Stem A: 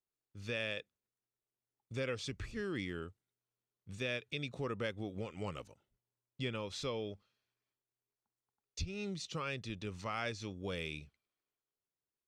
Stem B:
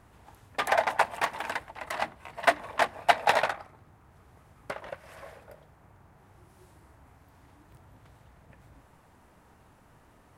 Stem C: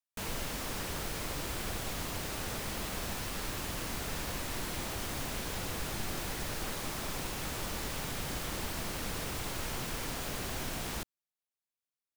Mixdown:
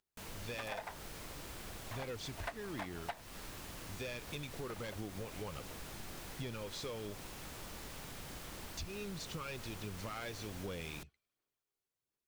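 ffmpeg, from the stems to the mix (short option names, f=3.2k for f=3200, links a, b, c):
-filter_complex "[0:a]volume=34dB,asoftclip=hard,volume=-34dB,aphaser=in_gain=1:out_gain=1:delay=2.8:decay=0.31:speed=1.4:type=sinusoidal,volume=0dB,asplit=2[a][b];[1:a]volume=-12dB[c];[2:a]volume=-10.5dB[d];[b]apad=whole_len=457495[e];[c][e]sidechaingate=range=-33dB:threshold=-60dB:ratio=16:detection=peak[f];[a][f][d]amix=inputs=3:normalize=0,acompressor=threshold=-40dB:ratio=4"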